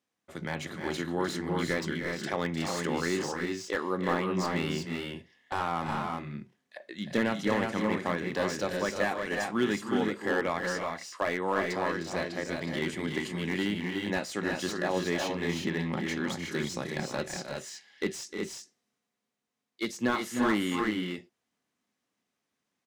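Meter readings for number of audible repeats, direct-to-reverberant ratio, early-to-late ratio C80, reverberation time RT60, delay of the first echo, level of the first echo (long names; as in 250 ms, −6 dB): 2, no reverb audible, no reverb audible, no reverb audible, 306 ms, −10.0 dB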